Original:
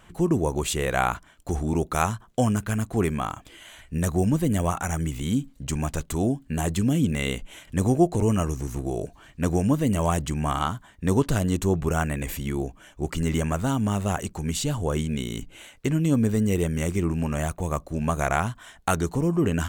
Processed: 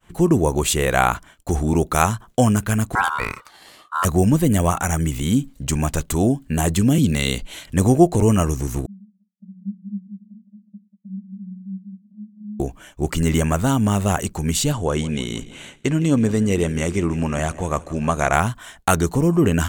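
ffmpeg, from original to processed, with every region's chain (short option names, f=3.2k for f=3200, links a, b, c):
-filter_complex "[0:a]asettb=1/sr,asplit=3[a][b][c];[a]atrim=end=2.954[d];[b]atrim=start=2.95:end=4.05,asetpts=PTS-STARTPTS,afade=t=in:d=0.004:c=qsin,afade=t=out:st=1.096:d=0.004:c=qsin,highshelf=f=5k:g=-3,aeval=exprs='val(0)*sin(2*PI*1200*n/s)':c=same[e];[c]atrim=start=4.046[f];[d][e]acrossfade=d=0.004:c1=hsin:c2=qsin[g];[g][f]acrossfade=d=0.004:c1=qsin:c2=hsin,asettb=1/sr,asplit=3[h][i][j];[h]atrim=end=6.984[k];[i]atrim=start=6.98:end=7.66,asetpts=PTS-STARTPTS,afade=t=in:d=0.004:c=qsin,afade=t=out:st=0.676:d=0.004:c=qsin,equalizer=f=4.3k:w=3.4:g=12.5,acrossover=split=260|3000[l][m][n];[m]acompressor=threshold=-31dB:ratio=2:attack=3.2:release=140:knee=2.83:detection=peak[o];[l][o][n]amix=inputs=3:normalize=0[p];[j]atrim=start=7.656[q];[k][p]acrossfade=d=0.004:c1=hsin:c2=qsin[r];[r][q]acrossfade=d=0.004:c1=qsin:c2=hsin,asettb=1/sr,asplit=3[s][t][u];[s]atrim=end=8.864[v];[t]atrim=start=8.86:end=12.6,asetpts=PTS-STARTPTS,afade=t=in:d=0.004:c=qsin,afade=t=out:st=3.736:d=0.004:c=qsin,acompressor=threshold=-29dB:ratio=2.5:attack=3.2:release=140:knee=1:detection=peak,asuperpass=centerf=200:order=8:qfactor=7.1,aecho=1:1:185|370|555:0.447|0.103|0.0236,atrim=end_sample=164934[w];[u]atrim=start=12.596[x];[v][w]acrossfade=d=0.004:c1=hsin:c2=qsin[y];[y][x]acrossfade=d=0.004:c1=qsin:c2=hsin,asettb=1/sr,asplit=3[z][aa][ab];[z]atrim=end=14.724[ac];[aa]atrim=start=14.72:end=18.33,asetpts=PTS-STARTPTS,afade=t=in:d=0.004:c=qsin,afade=t=out:st=3.606:d=0.004:c=qsin,lowpass=7.6k,lowshelf=f=180:g=-5.5,aecho=1:1:161|322|483|644|805:0.119|0.0701|0.0414|0.0244|0.0144,atrim=end_sample=159201[ad];[ab]atrim=start=18.326[ae];[ac][ad]acrossfade=d=0.004:c1=hsin:c2=qsin[af];[af][ae]acrossfade=d=0.004:c1=qsin:c2=hsin,agate=range=-33dB:threshold=-46dB:ratio=3:detection=peak,highshelf=f=8k:g=4,volume=6dB"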